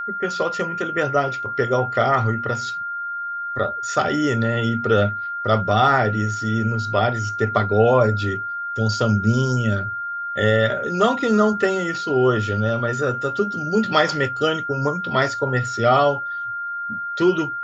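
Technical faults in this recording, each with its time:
whine 1.4 kHz -25 dBFS

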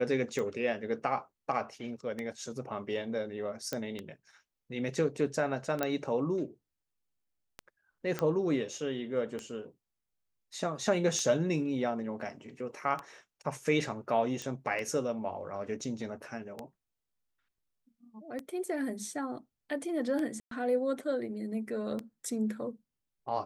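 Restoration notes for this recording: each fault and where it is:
tick 33 1/3 rpm -23 dBFS
3.73 s: pop -18 dBFS
5.83 s: pop -15 dBFS
8.19 s: pop -18 dBFS
14.42 s: pop -24 dBFS
20.40–20.51 s: dropout 113 ms

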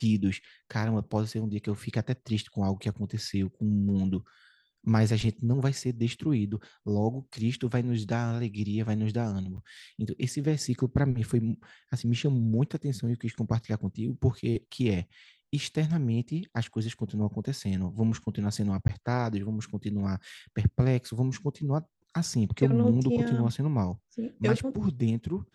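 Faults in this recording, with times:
9.57–9.58 s: dropout 8.9 ms
18.88–18.89 s: dropout 10 ms

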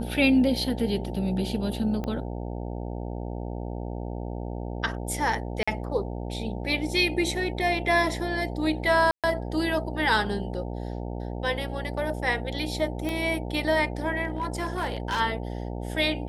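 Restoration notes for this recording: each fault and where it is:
buzz 60 Hz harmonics 15 -33 dBFS
2.04 s: pop -19 dBFS
5.63–5.67 s: dropout 45 ms
9.11–9.24 s: dropout 127 ms
13.09 s: pop -17 dBFS
14.25–15.21 s: clipped -23 dBFS

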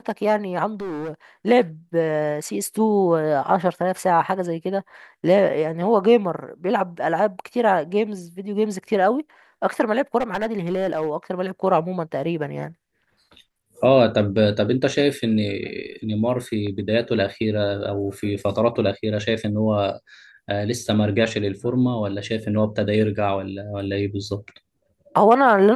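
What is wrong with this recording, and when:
0.73–1.12 s: clipped -26 dBFS
10.18–11.10 s: clipped -18 dBFS

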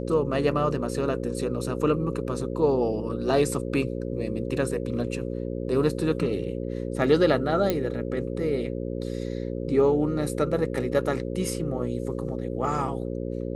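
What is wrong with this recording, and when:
buzz 60 Hz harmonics 9 -31 dBFS
7.70 s: pop -10 dBFS

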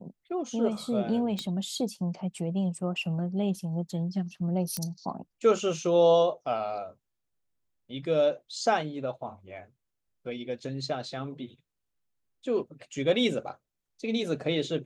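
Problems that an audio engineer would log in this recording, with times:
1.39 s: pop -20 dBFS
4.77 s: pop -15 dBFS

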